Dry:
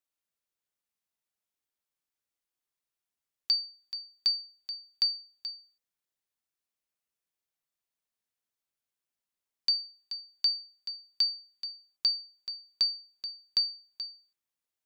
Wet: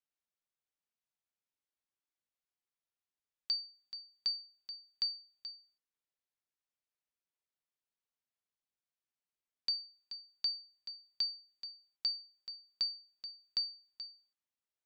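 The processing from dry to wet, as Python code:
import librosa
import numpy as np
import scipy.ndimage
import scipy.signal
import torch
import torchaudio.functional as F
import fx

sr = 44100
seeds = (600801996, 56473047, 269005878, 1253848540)

y = fx.air_absorb(x, sr, metres=58.0)
y = y * librosa.db_to_amplitude(-5.5)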